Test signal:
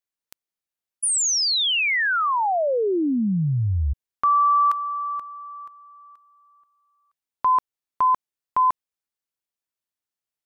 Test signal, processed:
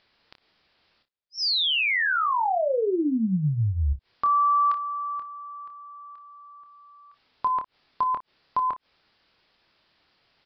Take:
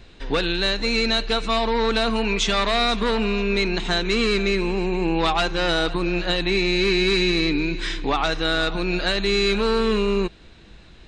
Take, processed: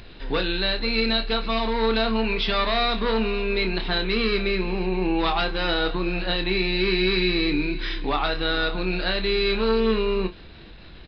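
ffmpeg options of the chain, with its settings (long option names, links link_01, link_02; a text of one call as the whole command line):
ffmpeg -i in.wav -filter_complex "[0:a]acompressor=mode=upward:threshold=-33dB:ratio=2.5:attack=1.7:release=71:knee=2.83:detection=peak,asplit=2[link_01][link_02];[link_02]aecho=0:1:27|58:0.422|0.133[link_03];[link_01][link_03]amix=inputs=2:normalize=0,aresample=11025,aresample=44100,volume=-3dB" out.wav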